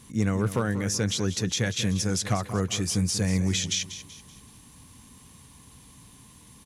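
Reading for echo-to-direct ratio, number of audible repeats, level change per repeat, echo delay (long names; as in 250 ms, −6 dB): −12.0 dB, 3, −8.0 dB, 190 ms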